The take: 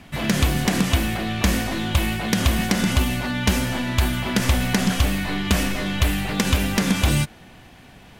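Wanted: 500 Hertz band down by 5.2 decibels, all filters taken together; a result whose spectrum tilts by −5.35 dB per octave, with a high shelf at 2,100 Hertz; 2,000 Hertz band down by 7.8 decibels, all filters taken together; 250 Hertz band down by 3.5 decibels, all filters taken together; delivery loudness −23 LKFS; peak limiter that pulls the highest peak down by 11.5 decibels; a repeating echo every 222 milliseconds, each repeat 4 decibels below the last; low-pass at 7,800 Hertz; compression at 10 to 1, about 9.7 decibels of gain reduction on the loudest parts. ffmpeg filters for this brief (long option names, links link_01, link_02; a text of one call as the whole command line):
ffmpeg -i in.wav -af "lowpass=7800,equalizer=frequency=250:width_type=o:gain=-3.5,equalizer=frequency=500:width_type=o:gain=-5,equalizer=frequency=2000:width_type=o:gain=-5,highshelf=frequency=2100:gain=-8,acompressor=threshold=-24dB:ratio=10,alimiter=level_in=1.5dB:limit=-24dB:level=0:latency=1,volume=-1.5dB,aecho=1:1:222|444|666|888|1110|1332|1554|1776|1998:0.631|0.398|0.25|0.158|0.0994|0.0626|0.0394|0.0249|0.0157,volume=9.5dB" out.wav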